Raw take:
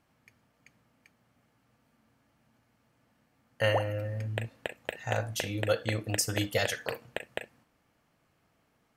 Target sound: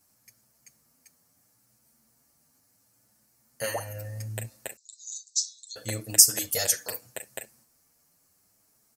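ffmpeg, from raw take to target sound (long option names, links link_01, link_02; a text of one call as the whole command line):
ffmpeg -i in.wav -filter_complex "[0:a]aexciter=amount=10.6:drive=4:freq=4700,asettb=1/sr,asplit=3[link_01][link_02][link_03];[link_01]atrim=end=4.764[link_04];[link_02]atrim=start=4.76:end=5.76,asetpts=PTS-STARTPTS,afade=type=in:duration=0.004:curve=qsin,afade=type=out:start_time=0.996:duration=0.004:curve=qsin,asuperpass=centerf=5400:order=20:qfactor=1.3[link_05];[link_03]atrim=start=5.756[link_06];[link_04][link_05]acrossfade=duration=0.004:curve1=hsin:curve2=qsin[link_07];[link_07][link_06]acrossfade=duration=0.004:curve1=qsin:curve2=hsin,asplit=2[link_08][link_09];[link_09]adelay=7.8,afreqshift=0.72[link_10];[link_08][link_10]amix=inputs=2:normalize=1,volume=-1dB" out.wav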